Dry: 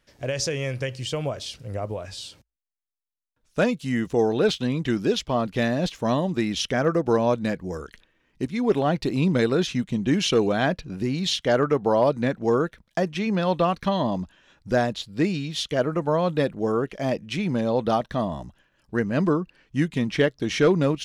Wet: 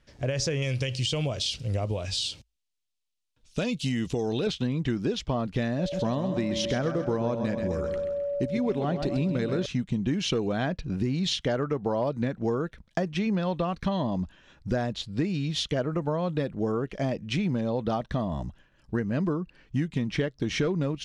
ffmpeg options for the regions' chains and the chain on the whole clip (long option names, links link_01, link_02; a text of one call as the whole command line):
ffmpeg -i in.wav -filter_complex "[0:a]asettb=1/sr,asplit=3[link_01][link_02][link_03];[link_01]atrim=end=0.624[link_04];[link_02]atrim=start=0.62:end=4.47,asetpts=PTS-STARTPTS,afade=type=in:duration=0.004:curve=qsin,afade=type=out:start_time=3.846:duration=0.004:curve=qsin,highshelf=frequency=2200:width_type=q:width=1.5:gain=8,acompressor=threshold=-23dB:ratio=3:attack=3.2:release=140:knee=1:detection=peak[link_05];[link_03]atrim=start=4.466[link_06];[link_04][link_05]acrossfade=duration=0.004:curve1=hsin:curve2=qsin[link_07];[link_07][link_06]acrossfade=duration=0.004:curve1=qsin:curve2=hsin,asettb=1/sr,asplit=3[link_08][link_09][link_10];[link_08]atrim=end=5.794[link_11];[link_09]atrim=start=5.79:end=9.66,asetpts=PTS-STARTPTS,afade=type=in:duration=0.004:curve=qsin,afade=type=out:start_time=3.866:duration=0.004:curve=qsin,aeval=exprs='val(0)+0.0501*sin(2*PI*570*n/s)':channel_layout=same,aecho=1:1:131|262|393|524|655:0.335|0.154|0.0709|0.0326|0.015,atrim=end_sample=170667[link_12];[link_10]atrim=start=9.656[link_13];[link_11][link_12]acrossfade=duration=0.004:curve1=hsin:curve2=qsin[link_14];[link_14][link_13]acrossfade=duration=0.004:curve1=qsin:curve2=hsin,lowpass=8200,lowshelf=frequency=190:gain=8.5,acompressor=threshold=-24dB:ratio=6" out.wav